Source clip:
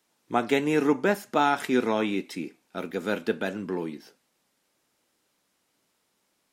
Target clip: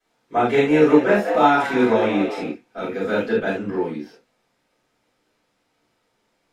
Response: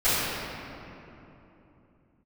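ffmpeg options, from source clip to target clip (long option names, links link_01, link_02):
-filter_complex "[0:a]aemphasis=mode=reproduction:type=50kf,asettb=1/sr,asplit=3[link_01][link_02][link_03];[link_01]atrim=end=0.414[link_04];[link_02]atrim=start=0.41:end=2.46,asetpts=PTS-STARTPTS,afade=type=in:duration=0.004:curve=qsin,afade=type=out:start_time=2.046:duration=0.004:curve=qsin,asplit=6[link_05][link_06][link_07][link_08][link_09][link_10];[link_06]adelay=185,afreqshift=110,volume=-9.5dB[link_11];[link_07]adelay=370,afreqshift=220,volume=-16.6dB[link_12];[link_08]adelay=555,afreqshift=330,volume=-23.8dB[link_13];[link_09]adelay=740,afreqshift=440,volume=-30.9dB[link_14];[link_10]adelay=925,afreqshift=550,volume=-38dB[link_15];[link_05][link_11][link_12][link_13][link_14][link_15]amix=inputs=6:normalize=0,atrim=end_sample=90405[link_16];[link_03]atrim=start=2.456[link_17];[link_04][link_16]acrossfade=duration=0.004:curve1=hsin:curve2=qsin[link_18];[link_18][link_17]acrossfade=duration=0.004:curve1=qsin:curve2=hsin[link_19];[1:a]atrim=start_sample=2205,afade=type=out:start_time=0.14:duration=0.01,atrim=end_sample=6615[link_20];[link_19][link_20]afir=irnorm=-1:irlink=0,volume=-6.5dB"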